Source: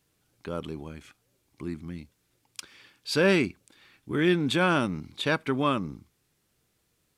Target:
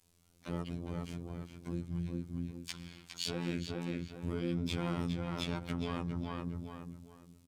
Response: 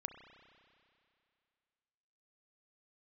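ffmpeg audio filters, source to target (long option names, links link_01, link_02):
-filter_complex "[0:a]acrossover=split=210|5900[link_01][link_02][link_03];[link_01]acontrast=27[link_04];[link_03]asoftclip=type=tanh:threshold=-39.5dB[link_05];[link_04][link_02][link_05]amix=inputs=3:normalize=0,asetrate=42336,aresample=44100,alimiter=limit=-20dB:level=0:latency=1:release=84,asuperstop=centerf=1800:order=4:qfactor=2.7,equalizer=frequency=8500:width_type=o:width=1.4:gain=4.5,asplit=2[link_06][link_07];[link_07]adelay=410,lowpass=frequency=3600:poles=1,volume=-5dB,asplit=2[link_08][link_09];[link_09]adelay=410,lowpass=frequency=3600:poles=1,volume=0.28,asplit=2[link_10][link_11];[link_11]adelay=410,lowpass=frequency=3600:poles=1,volume=0.28,asplit=2[link_12][link_13];[link_13]adelay=410,lowpass=frequency=3600:poles=1,volume=0.28[link_14];[link_06][link_08][link_10][link_12][link_14]amix=inputs=5:normalize=0,acompressor=threshold=-35dB:ratio=3,adynamicequalizer=threshold=0.002:dfrequency=130:dqfactor=1.7:tfrequency=130:tqfactor=1.7:attack=5:release=100:ratio=0.375:range=2:mode=boostabove:tftype=bell,asplit=4[link_15][link_16][link_17][link_18];[link_16]asetrate=29433,aresample=44100,atempo=1.49831,volume=-8dB[link_19];[link_17]asetrate=33038,aresample=44100,atempo=1.33484,volume=-7dB[link_20];[link_18]asetrate=66075,aresample=44100,atempo=0.66742,volume=-9dB[link_21];[link_15][link_19][link_20][link_21]amix=inputs=4:normalize=0,afftfilt=real='hypot(re,im)*cos(PI*b)':imag='0':win_size=2048:overlap=0.75"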